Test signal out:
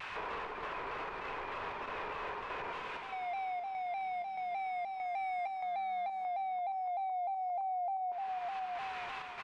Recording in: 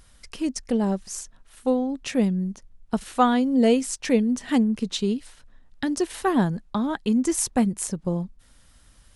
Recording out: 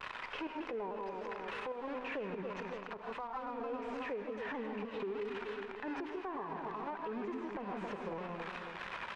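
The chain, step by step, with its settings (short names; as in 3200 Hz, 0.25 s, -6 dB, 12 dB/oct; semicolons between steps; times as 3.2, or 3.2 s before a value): switching spikes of -13.5 dBFS; recorder AGC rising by 65 dB/s; small resonant body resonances 420/1000/2500 Hz, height 10 dB, ringing for 35 ms; chopper 1.6 Hz, depth 65%, duty 75%; three-band isolator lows -22 dB, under 530 Hz, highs -23 dB, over 2600 Hz; in parallel at -10 dB: companded quantiser 2-bit; on the sum: tape spacing loss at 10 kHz 43 dB; on a send: feedback echo 0.27 s, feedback 50%, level -11.5 dB; on the sum: non-linear reverb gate 0.19 s rising, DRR 5 dB; compressor 10:1, threshold -36 dBFS; limiter -33 dBFS; shaped vibrato saw down 3.3 Hz, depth 100 cents; gain +1 dB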